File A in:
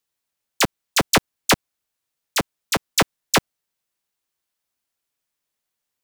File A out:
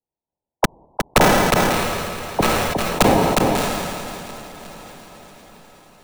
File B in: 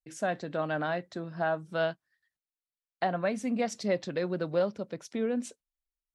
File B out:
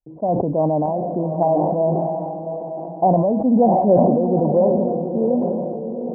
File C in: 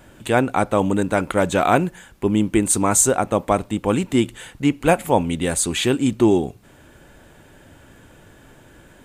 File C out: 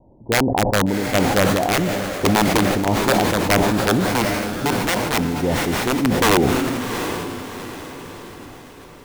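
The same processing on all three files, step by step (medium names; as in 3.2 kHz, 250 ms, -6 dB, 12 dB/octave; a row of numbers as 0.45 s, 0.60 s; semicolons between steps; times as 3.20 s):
steep low-pass 980 Hz 96 dB/octave; integer overflow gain 10.5 dB; random-step tremolo 3.5 Hz, depth 55%; echo that smears into a reverb 739 ms, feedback 45%, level -7.5 dB; decay stretcher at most 23 dB/s; normalise loudness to -19 LUFS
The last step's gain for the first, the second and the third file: +6.0 dB, +14.0 dB, +2.0 dB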